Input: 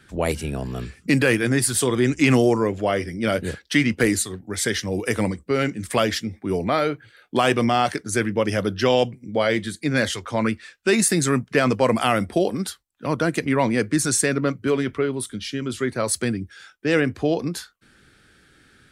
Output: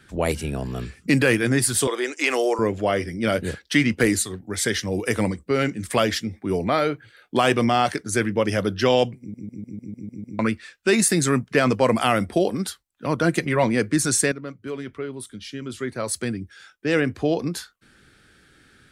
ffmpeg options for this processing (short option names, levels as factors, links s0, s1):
-filter_complex "[0:a]asettb=1/sr,asplit=3[s0][s1][s2];[s0]atrim=end=1.874[s3];[s1]atrim=start=1.87:end=2.59,asetpts=PTS-STARTPTS,afade=t=in:d=0.004:c=qsin,afade=t=out:st=0.716:d=0.004:c=qsin,highpass=f=410:w=0.5412,highpass=f=410:w=1.3066[s4];[s2]atrim=start=2.586[s5];[s3][s4]acrossfade=d=0.004:c1=hsin:c2=qsin[s6];[s6][s5]acrossfade=d=0.004:c1=qsin:c2=hsin,asettb=1/sr,asplit=3[s7][s8][s9];[s7]atrim=end=13.234[s10];[s8]atrim=start=13.23:end=13.64,asetpts=PTS-STARTPTS,afade=t=in:d=0.004:c=qsin,afade=t=out:st=0.406:d=0.004:c=qsin,aecho=1:1:5.6:0.51,atrim=end_sample=18081[s11];[s9]atrim=start=13.636[s12];[s10][s11]acrossfade=d=0.004:c1=hsin:c2=qsin[s13];[s13][s12]acrossfade=d=0.004:c1=qsin:c2=hsin,asplit=10[s14][s15][s16][s17][s18][s19][s20][s21][s22][s23];[s14]atrim=end=9.342[s24];[s15]atrim=start=9.188:end=9.342[s25];[s16]atrim=start=9.188:end=9.342[s26];[s17]atrim=start=9.188:end=9.342[s27];[s18]atrim=start=9.188:end=9.342[s28];[s19]atrim=start=9.188:end=9.342[s29];[s20]atrim=start=9.188:end=9.342[s30];[s21]atrim=start=9.188:end=9.342[s31];[s22]atrim=start=10.388:end=14.32,asetpts=PTS-STARTPTS,afade=t=out:st=3.928:d=0.004:c=hsin:silence=0.211349[s32];[s23]atrim=start=14.32,asetpts=PTS-STARTPTS,afade=t=in:d=3.19:silence=0.211349[s33];[s24][s25]acrossfade=d=0.004:c1=hsin:c2=hsin[s34];[s34][s26]acrossfade=d=0.004:c1=hsin:c2=hsin[s35];[s35][s27]acrossfade=d=0.004:c1=hsin:c2=hsin[s36];[s36][s28]acrossfade=d=0.004:c1=hsin:c2=hsin[s37];[s37][s29]acrossfade=d=0.004:c1=hsin:c2=hsin[s38];[s38][s30]acrossfade=d=0.004:c1=hsin:c2=hsin[s39];[s39][s31]acrossfade=d=0.004:c1=hsin:c2=hsin[s40];[s32][s33]concat=n=2:v=0:a=1[s41];[s40][s41]acrossfade=d=0.004:c1=hsin:c2=hsin"